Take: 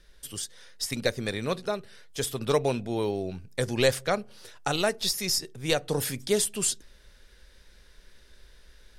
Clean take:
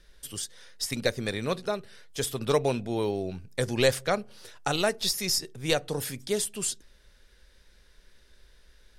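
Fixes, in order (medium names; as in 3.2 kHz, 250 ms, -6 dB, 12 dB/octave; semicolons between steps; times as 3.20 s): gain correction -3.5 dB, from 5.89 s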